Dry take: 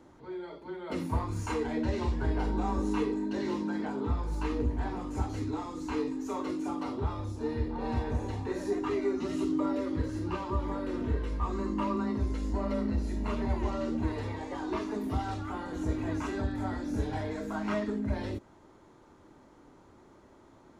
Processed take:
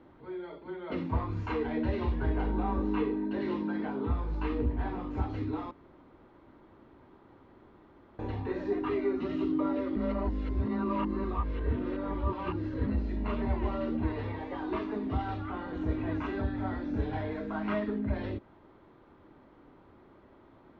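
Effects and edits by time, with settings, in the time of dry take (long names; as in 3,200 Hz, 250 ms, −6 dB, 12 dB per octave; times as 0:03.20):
0:02.29–0:03.42: parametric band 6,200 Hz −5 dB 1.3 octaves
0:05.71–0:08.19: fill with room tone
0:09.96–0:12.87: reverse
whole clip: low-pass filter 3,500 Hz 24 dB per octave; notch filter 890 Hz, Q 29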